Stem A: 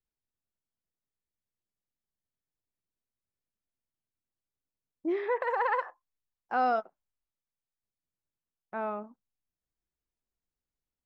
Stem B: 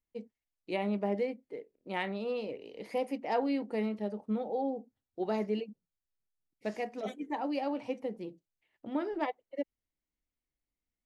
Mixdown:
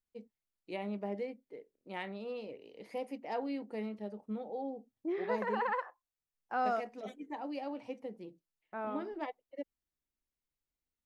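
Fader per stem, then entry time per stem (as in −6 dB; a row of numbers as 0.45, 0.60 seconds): −5.5, −6.5 decibels; 0.00, 0.00 seconds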